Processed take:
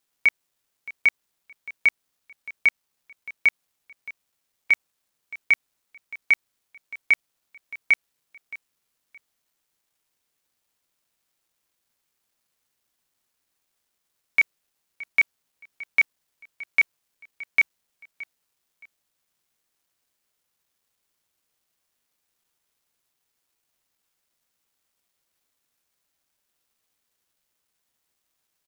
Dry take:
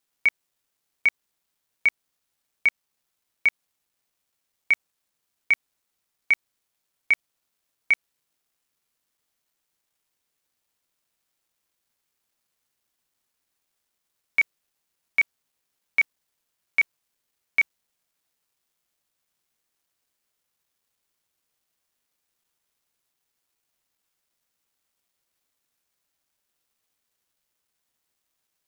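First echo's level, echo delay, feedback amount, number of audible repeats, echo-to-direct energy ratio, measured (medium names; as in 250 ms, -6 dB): -19.0 dB, 620 ms, 26%, 2, -18.5 dB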